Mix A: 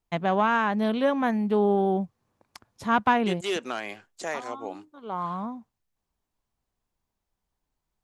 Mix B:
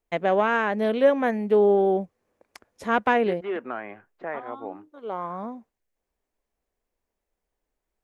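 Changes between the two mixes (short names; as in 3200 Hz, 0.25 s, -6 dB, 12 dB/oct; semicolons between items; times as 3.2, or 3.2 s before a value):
first voice: add graphic EQ 125/500/1000/2000/4000 Hz -12/+9/-5/+5/-4 dB; second voice: add LPF 1900 Hz 24 dB/oct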